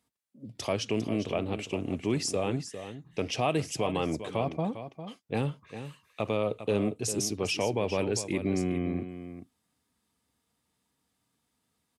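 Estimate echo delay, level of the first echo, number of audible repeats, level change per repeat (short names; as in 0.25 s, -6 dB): 0.402 s, -11.0 dB, 1, no steady repeat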